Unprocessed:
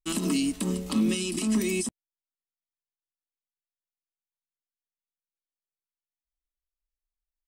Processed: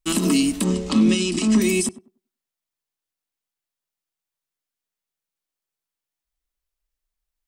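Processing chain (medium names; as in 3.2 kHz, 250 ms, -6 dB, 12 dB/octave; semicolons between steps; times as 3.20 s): 0.64–1.62 s: low-pass 7.8 kHz 24 dB/octave; tape echo 98 ms, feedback 25%, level -14 dB, low-pass 1 kHz; trim +7.5 dB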